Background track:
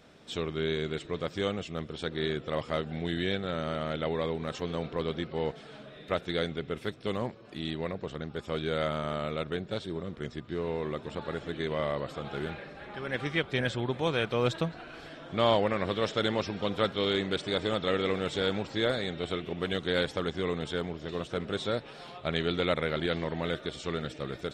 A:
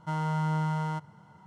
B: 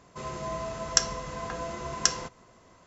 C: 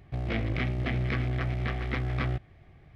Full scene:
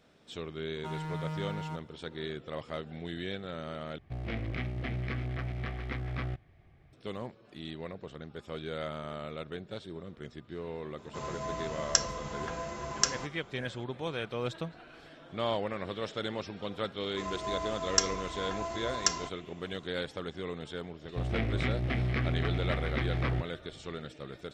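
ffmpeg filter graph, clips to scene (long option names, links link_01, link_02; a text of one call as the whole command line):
ffmpeg -i bed.wav -i cue0.wav -i cue1.wav -i cue2.wav -filter_complex "[3:a]asplit=2[link_01][link_02];[2:a]asplit=2[link_03][link_04];[0:a]volume=-7dB[link_05];[1:a]asoftclip=type=hard:threshold=-28.5dB[link_06];[link_04]aecho=1:1:2.9:0.92[link_07];[link_05]asplit=2[link_08][link_09];[link_08]atrim=end=3.984[link_10];[link_01]atrim=end=2.95,asetpts=PTS-STARTPTS,volume=-6dB[link_11];[link_09]atrim=start=6.926[link_12];[link_06]atrim=end=1.46,asetpts=PTS-STARTPTS,volume=-6dB,afade=type=in:duration=0.004:curve=hsin,afade=type=out:start_time=1.456:duration=0.004:curve=hsin,adelay=770[link_13];[link_03]atrim=end=2.86,asetpts=PTS-STARTPTS,volume=-3dB,afade=type=in:duration=0.004:curve=hsin,afade=type=out:start_time=2.856:duration=0.004:curve=hsin,adelay=484218S[link_14];[link_07]atrim=end=2.86,asetpts=PTS-STARTPTS,volume=-6dB,afade=type=in:duration=0.004:curve=hsin,afade=type=out:start_time=2.856:duration=0.004:curve=hsin,adelay=17010[link_15];[link_02]atrim=end=2.95,asetpts=PTS-STARTPTS,volume=-1.5dB,afade=type=in:duration=0.004:curve=hsin,afade=type=out:start_time=2.946:duration=0.004:curve=hsin,adelay=21040[link_16];[link_10][link_11]acrossfade=duration=0.004:curve1=hsin:curve2=hsin[link_17];[link_17][link_12]acrossfade=duration=0.004:curve1=hsin:curve2=hsin[link_18];[link_18][link_13][link_14][link_15][link_16]amix=inputs=5:normalize=0" out.wav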